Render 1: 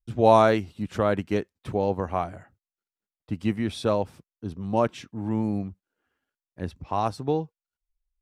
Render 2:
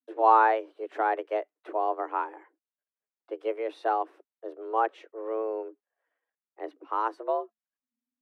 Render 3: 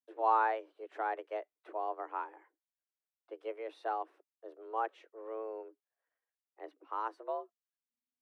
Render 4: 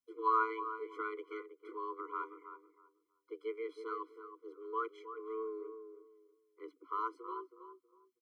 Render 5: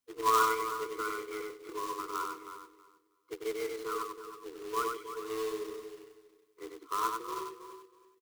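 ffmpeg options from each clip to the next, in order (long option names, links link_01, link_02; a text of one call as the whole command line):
ffmpeg -i in.wav -filter_complex "[0:a]afreqshift=220,acrossover=split=360 2500:gain=0.0708 1 0.1[link_01][link_02][link_03];[link_01][link_02][link_03]amix=inputs=3:normalize=0,acrossover=split=3100[link_04][link_05];[link_05]acompressor=threshold=-48dB:ratio=4:attack=1:release=60[link_06];[link_04][link_06]amix=inputs=2:normalize=0,volume=-2dB" out.wav
ffmpeg -i in.wav -af "lowshelf=frequency=260:gain=-9.5,volume=-8dB" out.wav
ffmpeg -i in.wav -filter_complex "[0:a]asplit=2[link_01][link_02];[link_02]adelay=321,lowpass=frequency=1200:poles=1,volume=-8.5dB,asplit=2[link_03][link_04];[link_04]adelay=321,lowpass=frequency=1200:poles=1,volume=0.25,asplit=2[link_05][link_06];[link_06]adelay=321,lowpass=frequency=1200:poles=1,volume=0.25[link_07];[link_01][link_03][link_05][link_07]amix=inputs=4:normalize=0,afftfilt=real='re*eq(mod(floor(b*sr/1024/490),2),0)':imag='im*eq(mod(floor(b*sr/1024/490),2),0)':win_size=1024:overlap=0.75,volume=2.5dB" out.wav
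ffmpeg -i in.wav -af "acrusher=bits=2:mode=log:mix=0:aa=0.000001,aecho=1:1:95|190|285:0.631|0.101|0.0162,volume=3.5dB" out.wav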